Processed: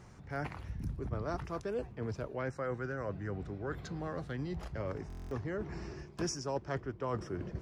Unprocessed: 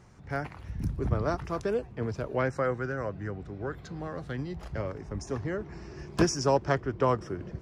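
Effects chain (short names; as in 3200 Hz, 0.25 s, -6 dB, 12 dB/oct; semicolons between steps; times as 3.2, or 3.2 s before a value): reverse; compressor 4:1, threshold -36 dBFS, peak gain reduction 15.5 dB; reverse; stuck buffer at 5.08, samples 1024, times 9; gain +1 dB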